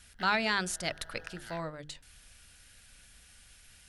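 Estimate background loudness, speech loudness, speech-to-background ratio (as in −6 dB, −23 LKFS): −51.5 LKFS, −33.0 LKFS, 18.5 dB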